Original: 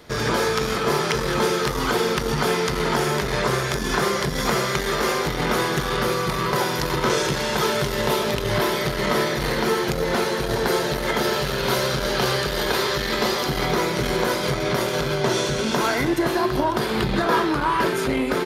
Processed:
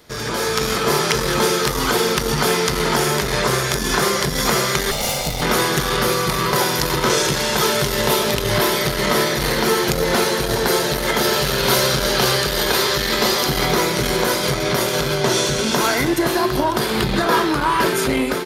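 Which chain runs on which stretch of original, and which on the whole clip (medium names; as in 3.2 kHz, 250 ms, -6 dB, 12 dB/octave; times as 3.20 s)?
4.91–5.42 s: comb filter that takes the minimum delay 1.4 ms + peaking EQ 1.5 kHz -13 dB 0.61 oct
whole clip: level rider; treble shelf 4.6 kHz +8.5 dB; trim -4 dB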